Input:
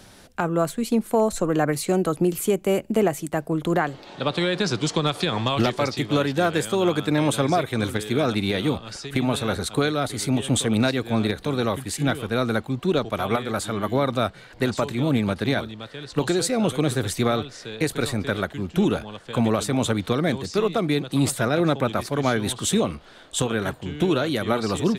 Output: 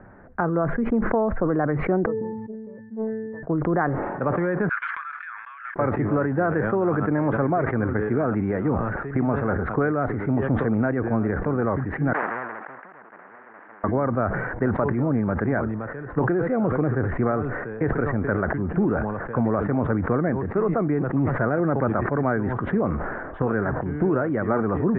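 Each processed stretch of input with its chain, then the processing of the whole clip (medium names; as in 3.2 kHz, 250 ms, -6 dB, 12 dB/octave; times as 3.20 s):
2.06–3.43 s: pitch-class resonator A, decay 0.75 s + loudspeaker Doppler distortion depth 0.21 ms
4.69–5.76 s: steep high-pass 1.5 kHz + band-stop 1.9 kHz, Q 9.2 + gate -40 dBFS, range -30 dB
12.13–13.84 s: comb filter that takes the minimum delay 0.44 ms + high-pass 770 Hz 24 dB/octave + spectrum-flattening compressor 10:1
whole clip: compression 2.5:1, threshold -22 dBFS; steep low-pass 1.8 kHz 48 dB/octave; decay stretcher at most 30 dB/s; trim +2 dB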